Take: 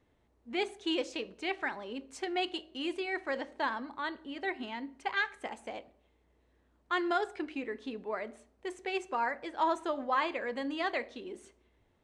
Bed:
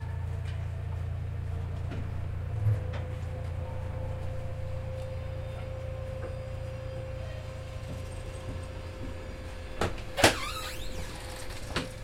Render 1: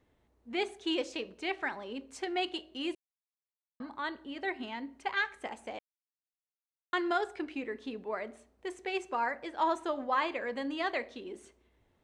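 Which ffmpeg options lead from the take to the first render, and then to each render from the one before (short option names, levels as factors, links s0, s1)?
-filter_complex "[0:a]asplit=5[s0][s1][s2][s3][s4];[s0]atrim=end=2.95,asetpts=PTS-STARTPTS,afade=t=out:st=2.946:d=0.004:c=hsin[s5];[s1]atrim=start=2.95:end=3.8,asetpts=PTS-STARTPTS,volume=0[s6];[s2]atrim=start=3.8:end=5.79,asetpts=PTS-STARTPTS,afade=t=in:d=0.004:c=hsin,afade=t=out:st=1.986:d=0.004:c=hsin[s7];[s3]atrim=start=5.79:end=6.93,asetpts=PTS-STARTPTS,volume=0[s8];[s4]atrim=start=6.93,asetpts=PTS-STARTPTS,afade=t=in:d=0.004:c=hsin[s9];[s5][s6][s7][s8][s9]concat=n=5:v=0:a=1"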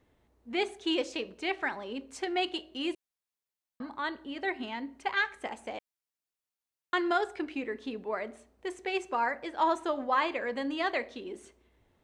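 -af "volume=1.33"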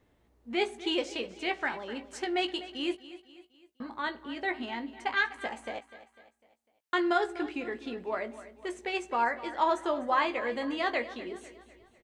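-filter_complex "[0:a]asplit=2[s0][s1];[s1]adelay=17,volume=0.398[s2];[s0][s2]amix=inputs=2:normalize=0,aecho=1:1:250|500|750|1000:0.168|0.0789|0.0371|0.0174"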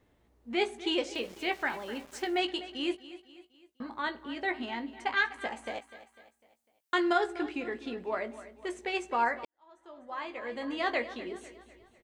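-filter_complex "[0:a]asettb=1/sr,asplit=3[s0][s1][s2];[s0]atrim=end=1.154[s3];[s1]atrim=start=1.15:end=2.38,asetpts=PTS-STARTPTS,afade=t=in:d=0.004:c=qsin,afade=t=out:st=1.226:d=0.004:c=qsin,aeval=exprs='val(0)*gte(abs(val(0)),0.00376)':c=same[s4];[s2]atrim=start=2.376[s5];[s3][s4]acrossfade=d=0.004:c1=hsin:c2=qsin[s6];[s6][s5]acrossfade=d=0.004:c1=qsin:c2=hsin,asettb=1/sr,asplit=3[s7][s8][s9];[s7]atrim=end=5.664[s10];[s8]atrim=start=5.66:end=7.13,asetpts=PTS-STARTPTS,afade=t=in:d=0.004:c=qsin,afade=t=out:st=1.466:d=0.004:c=qsin,highshelf=f=6000:g=7.5[s11];[s9]atrim=start=7.126[s12];[s10][s11]acrossfade=d=0.004:c1=hsin:c2=qsin[s13];[s13][s12]acrossfade=d=0.004:c1=qsin:c2=hsin,asplit=2[s14][s15];[s14]atrim=end=9.45,asetpts=PTS-STARTPTS,afade=t=out:st=9.446:d=0.004:c=hsin[s16];[s15]atrim=start=9.45,asetpts=PTS-STARTPTS,afade=t=in:d=1.45:c=qua[s17];[s16][s17]concat=n=2:v=0:a=1"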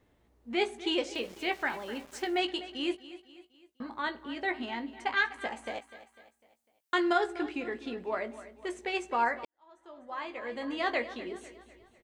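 -af anull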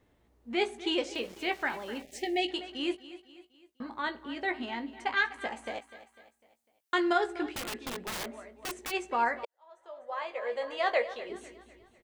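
-filter_complex "[0:a]asettb=1/sr,asplit=3[s0][s1][s2];[s0]atrim=end=2.024[s3];[s1]atrim=start=2.02:end=2.51,asetpts=PTS-STARTPTS,afade=t=in:d=0.004:c=qsin,afade=t=out:st=0.486:d=0.004:c=qsin,asuperstop=centerf=1200:order=12:qfactor=1.2[s4];[s2]atrim=start=2.506[s5];[s3][s4]acrossfade=d=0.004:c1=hsin:c2=qsin[s6];[s6][s5]acrossfade=d=0.004:c1=qsin:c2=hsin,asplit=3[s7][s8][s9];[s7]afade=t=out:st=7.51:d=0.02[s10];[s8]aeval=exprs='(mod(37.6*val(0)+1,2)-1)/37.6':c=same,afade=t=in:st=7.51:d=0.02,afade=t=out:st=8.9:d=0.02[s11];[s9]afade=t=in:st=8.9:d=0.02[s12];[s10][s11][s12]amix=inputs=3:normalize=0,asettb=1/sr,asplit=3[s13][s14][s15];[s13]atrim=end=9.434[s16];[s14]atrim=start=9.43:end=11.3,asetpts=PTS-STARTPTS,afade=t=in:d=0.004:c=qsin,afade=t=out:st=1.866:d=0.004:c=qsin,lowshelf=f=380:t=q:w=3:g=-9.5[s17];[s15]atrim=start=11.296[s18];[s16][s17]acrossfade=d=0.004:c1=hsin:c2=qsin[s19];[s19][s18]acrossfade=d=0.004:c1=qsin:c2=hsin"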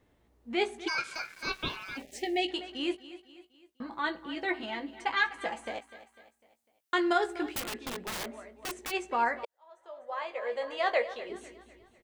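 -filter_complex "[0:a]asplit=3[s0][s1][s2];[s0]afade=t=out:st=0.87:d=0.02[s3];[s1]aeval=exprs='val(0)*sin(2*PI*1900*n/s)':c=same,afade=t=in:st=0.87:d=0.02,afade=t=out:st=1.96:d=0.02[s4];[s2]afade=t=in:st=1.96:d=0.02[s5];[s3][s4][s5]amix=inputs=3:normalize=0,asettb=1/sr,asplit=3[s6][s7][s8];[s6]atrim=end=3.914[s9];[s7]atrim=start=3.91:end=5.65,asetpts=PTS-STARTPTS,afade=t=in:d=0.004:c=qsin,afade=t=out:st=1.736:d=0.004:c=qsin,aecho=1:1:6:0.65,atrim=end_sample=76734[s10];[s8]atrim=start=5.646[s11];[s9][s10]acrossfade=d=0.004:c1=hsin:c2=qsin[s12];[s12][s11]acrossfade=d=0.004:c1=qsin:c2=hsin,asettb=1/sr,asplit=3[s13][s14][s15];[s13]atrim=end=7.114[s16];[s14]atrim=start=7.11:end=7.6,asetpts=PTS-STARTPTS,afade=t=in:d=0.004:c=qsin,afade=t=out:st=0.486:d=0.004:c=qsin,highshelf=f=10000:g=11[s17];[s15]atrim=start=7.596[s18];[s16][s17]acrossfade=d=0.004:c1=hsin:c2=qsin[s19];[s19][s18]acrossfade=d=0.004:c1=qsin:c2=hsin"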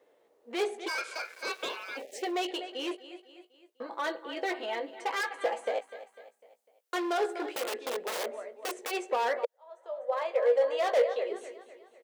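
-af "volume=31.6,asoftclip=hard,volume=0.0316,highpass=f=490:t=q:w=4.1"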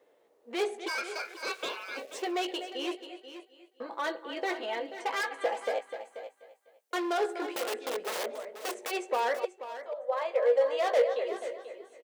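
-af "aecho=1:1:485:0.237"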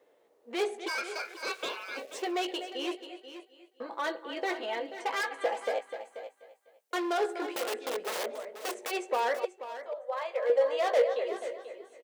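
-filter_complex "[0:a]asettb=1/sr,asplit=3[s0][s1][s2];[s0]atrim=end=9.984[s3];[s1]atrim=start=9.98:end=10.5,asetpts=PTS-STARTPTS,afade=t=in:d=0.004:c=qsin,afade=t=out:st=0.516:d=0.004:c=qsin,highpass=f=730:p=1[s4];[s2]atrim=start=10.496[s5];[s3][s4]acrossfade=d=0.004:c1=hsin:c2=qsin[s6];[s6][s5]acrossfade=d=0.004:c1=qsin:c2=hsin"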